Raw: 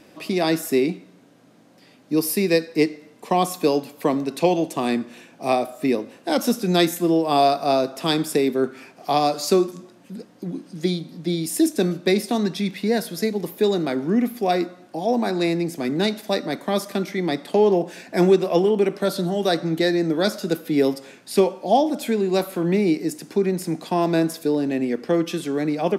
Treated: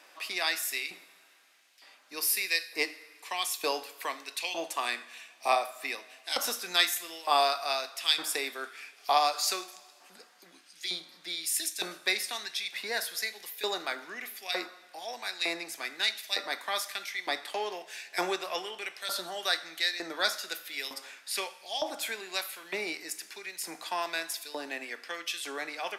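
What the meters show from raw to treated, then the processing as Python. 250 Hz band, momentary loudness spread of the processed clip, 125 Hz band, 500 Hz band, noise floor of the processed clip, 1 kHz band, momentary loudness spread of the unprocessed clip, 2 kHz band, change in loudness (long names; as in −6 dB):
−26.5 dB, 11 LU, below −30 dB, −17.5 dB, −59 dBFS, −8.0 dB, 8 LU, −0.5 dB, −10.0 dB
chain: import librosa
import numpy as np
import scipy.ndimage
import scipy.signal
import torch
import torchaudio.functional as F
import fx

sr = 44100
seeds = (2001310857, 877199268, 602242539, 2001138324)

y = fx.filter_lfo_highpass(x, sr, shape='saw_up', hz=1.1, low_hz=930.0, high_hz=2600.0, q=1.1)
y = fx.rev_double_slope(y, sr, seeds[0], early_s=0.46, late_s=2.5, knee_db=-16, drr_db=12.0)
y = y * librosa.db_to_amplitude(-1.5)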